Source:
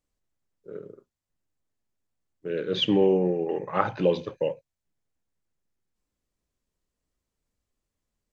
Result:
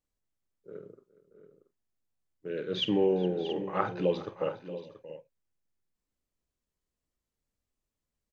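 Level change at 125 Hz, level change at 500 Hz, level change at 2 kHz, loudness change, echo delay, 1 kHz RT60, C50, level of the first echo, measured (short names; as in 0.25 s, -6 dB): -5.0 dB, -5.0 dB, -5.0 dB, -5.5 dB, 44 ms, none, none, -13.0 dB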